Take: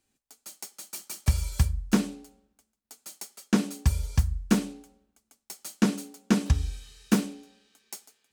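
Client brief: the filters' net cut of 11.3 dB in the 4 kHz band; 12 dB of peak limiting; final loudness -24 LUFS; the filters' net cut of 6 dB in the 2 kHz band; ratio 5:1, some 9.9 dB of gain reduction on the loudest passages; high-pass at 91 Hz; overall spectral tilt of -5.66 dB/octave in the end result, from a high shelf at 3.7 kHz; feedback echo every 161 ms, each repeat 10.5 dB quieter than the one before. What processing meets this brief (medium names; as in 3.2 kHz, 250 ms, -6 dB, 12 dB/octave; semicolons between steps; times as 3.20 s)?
high-pass 91 Hz; peaking EQ 2 kHz -4 dB; treble shelf 3.7 kHz -8.5 dB; peaking EQ 4 kHz -8 dB; compression 5:1, threshold -28 dBFS; peak limiter -29.5 dBFS; feedback delay 161 ms, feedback 30%, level -10.5 dB; trim +19 dB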